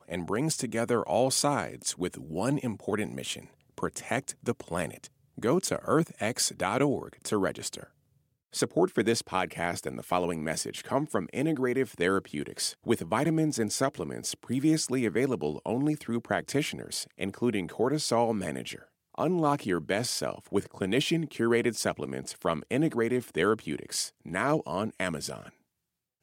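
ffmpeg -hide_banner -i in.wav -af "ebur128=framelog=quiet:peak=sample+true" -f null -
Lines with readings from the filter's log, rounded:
Integrated loudness:
  I:         -29.8 LUFS
  Threshold: -40.0 LUFS
Loudness range:
  LRA:         2.6 LU
  Threshold: -50.0 LUFS
  LRA low:   -31.5 LUFS
  LRA high:  -28.9 LUFS
Sample peak:
  Peak:      -10.9 dBFS
True peak:
  Peak:      -10.9 dBFS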